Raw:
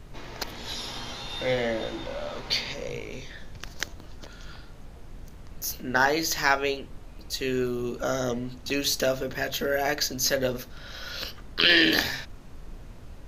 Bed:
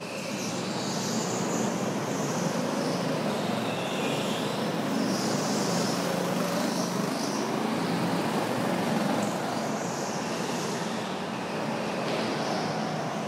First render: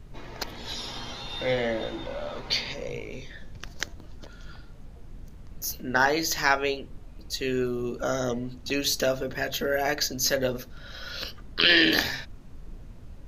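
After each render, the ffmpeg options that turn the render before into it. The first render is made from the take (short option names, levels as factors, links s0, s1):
-af "afftdn=nr=6:nf=-45"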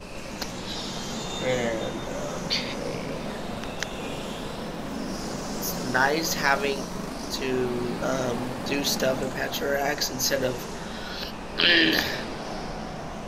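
-filter_complex "[1:a]volume=0.562[s0];[0:a][s0]amix=inputs=2:normalize=0"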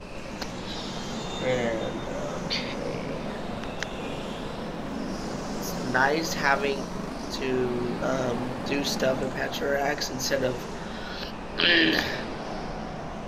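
-af "lowpass=f=3900:p=1"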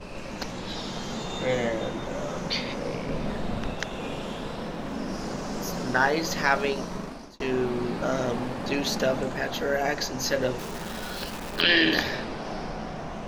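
-filter_complex "[0:a]asettb=1/sr,asplit=3[s0][s1][s2];[s0]atrim=end=3.084[s3];[s1]atrim=start=3.08:end=3.74,asetpts=PTS-STARTPTS,afade=t=in:d=0.004:c=qsin,afade=t=out:st=0.656:d=0.004:c=qsin,lowshelf=f=170:g=8[s4];[s2]atrim=start=3.736[s5];[s3][s4]acrossfade=d=0.004:c1=hsin:c2=qsin[s6];[s6][s5]acrossfade=d=0.004:c1=qsin:c2=hsin,asplit=3[s7][s8][s9];[s7]afade=t=out:st=10.58:d=0.02[s10];[s8]acrusher=bits=7:dc=4:mix=0:aa=0.000001,afade=t=in:st=10.58:d=0.02,afade=t=out:st=11.6:d=0.02[s11];[s9]afade=t=in:st=11.6:d=0.02[s12];[s10][s11][s12]amix=inputs=3:normalize=0,asplit=2[s13][s14];[s13]atrim=end=7.4,asetpts=PTS-STARTPTS,afade=t=out:st=6.94:d=0.46[s15];[s14]atrim=start=7.4,asetpts=PTS-STARTPTS,afade=t=in:d=0.004:c=hsin[s16];[s15][s16]concat=n=2:v=0:a=1"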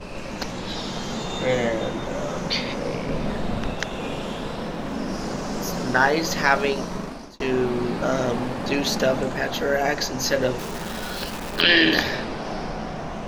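-af "volume=1.58"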